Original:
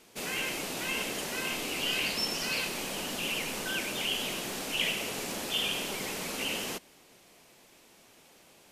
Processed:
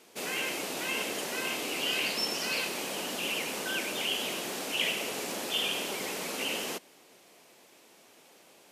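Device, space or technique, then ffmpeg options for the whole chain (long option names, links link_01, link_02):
filter by subtraction: -filter_complex "[0:a]asplit=2[link_01][link_02];[link_02]lowpass=400,volume=-1[link_03];[link_01][link_03]amix=inputs=2:normalize=0"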